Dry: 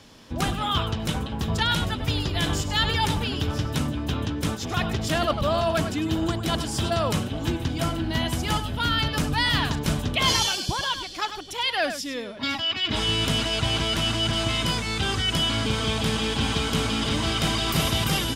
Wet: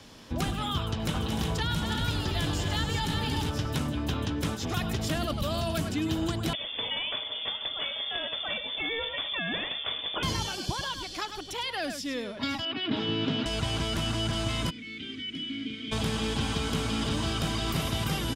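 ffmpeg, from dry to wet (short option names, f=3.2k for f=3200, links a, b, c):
-filter_complex "[0:a]asplit=3[a][b][c];[a]afade=t=out:st=1.13:d=0.02[d];[b]aecho=1:1:231|300|363:0.398|0.282|0.531,afade=t=in:st=1.13:d=0.02,afade=t=out:st=3.49:d=0.02[e];[c]afade=t=in:st=3.49:d=0.02[f];[d][e][f]amix=inputs=3:normalize=0,asettb=1/sr,asplit=3[g][h][i];[g]atrim=end=4.744[j];[h]atrim=start=4.74:end=5.89,asetpts=PTS-STARTPTS,afade=t=in:d=0.004:c=qsin,afade=t=out:st=1.146:d=0.004:c=qsin,highshelf=f=8.9k:g=10.5[k];[i]atrim=start=5.886[l];[j][k]acrossfade=d=0.004:c1=hsin:c2=qsin[m];[m][l]acrossfade=d=0.004:c1=qsin:c2=hsin,asettb=1/sr,asplit=3[n][o][p];[n]atrim=end=6.534[q];[o]atrim=start=6.53:end=10.23,asetpts=PTS-STARTPTS,afade=t=in:d=0.004:c=qsin,afade=t=out:st=3.696:d=0.004:c=qsin,lowpass=f=3.1k:t=q:w=0.5098,lowpass=f=3.1k:t=q:w=0.6013,lowpass=f=3.1k:t=q:w=0.9,lowpass=f=3.1k:t=q:w=2.563,afreqshift=-3600[r];[p]atrim=start=10.226[s];[q][r]acrossfade=d=0.004:c1=hsin:c2=qsin[t];[t][s]acrossfade=d=0.004:c1=qsin:c2=hsin,asettb=1/sr,asplit=3[u][v][w];[u]atrim=end=12.654[x];[v]atrim=start=12.65:end=13.46,asetpts=PTS-STARTPTS,afade=t=in:d=0.004:c=qsin,afade=t=out:st=0.806:d=0.004:c=qsin,highpass=f=120:w=0.5412,highpass=f=120:w=1.3066,equalizer=f=270:t=q:w=4:g=9,equalizer=f=390:t=q:w=4:g=4,equalizer=f=1.1k:t=q:w=4:g=-3,equalizer=f=2.1k:t=q:w=4:g=-3,lowpass=f=3.7k:w=0.5412,lowpass=f=3.7k:w=1.3066[y];[w]atrim=start=13.456[z];[x][y]acrossfade=d=0.004:c1=hsin:c2=qsin[aa];[aa][z]acrossfade=d=0.004:c1=qsin:c2=hsin,asplit=3[ab][ac][ad];[ab]afade=t=out:st=14.69:d=0.02[ae];[ac]asplit=3[af][ag][ah];[af]bandpass=f=270:t=q:w=8,volume=0dB[ai];[ag]bandpass=f=2.29k:t=q:w=8,volume=-6dB[aj];[ah]bandpass=f=3.01k:t=q:w=8,volume=-9dB[ak];[ai][aj][ak]amix=inputs=3:normalize=0,afade=t=in:st=14.69:d=0.02,afade=t=out:st=15.91:d=0.02[al];[ad]afade=t=in:st=15.91:d=0.02[am];[ae][al][am]amix=inputs=3:normalize=0,asettb=1/sr,asplit=3[an][ao][ap];[an]atrim=end=17.074[aq];[ao]atrim=start=17.07:end=17.48,asetpts=PTS-STARTPTS,afade=t=in:d=0.004:c=qsin,afade=t=out:st=0.406:d=0.004:c=qsin,bandreject=f=2.1k:w=11[ar];[ap]atrim=start=17.476[as];[aq][ar]acrossfade=d=0.004:c1=hsin:c2=qsin[at];[at][as]acrossfade=d=0.004:c1=qsin:c2=hsin,acrossover=split=370|2000|4600[au][av][aw][ax];[au]acompressor=threshold=-28dB:ratio=4[ay];[av]acompressor=threshold=-36dB:ratio=4[az];[aw]acompressor=threshold=-40dB:ratio=4[ba];[ax]acompressor=threshold=-42dB:ratio=4[bb];[ay][az][ba][bb]amix=inputs=4:normalize=0"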